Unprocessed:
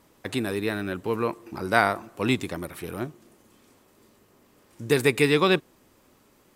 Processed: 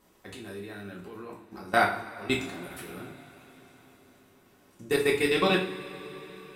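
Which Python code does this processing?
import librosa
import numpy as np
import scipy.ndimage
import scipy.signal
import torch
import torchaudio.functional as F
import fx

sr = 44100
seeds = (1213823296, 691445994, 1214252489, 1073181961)

y = fx.level_steps(x, sr, step_db=21)
y = fx.rev_double_slope(y, sr, seeds[0], early_s=0.39, late_s=4.9, knee_db=-22, drr_db=-2.5)
y = y * librosa.db_to_amplitude(-3.5)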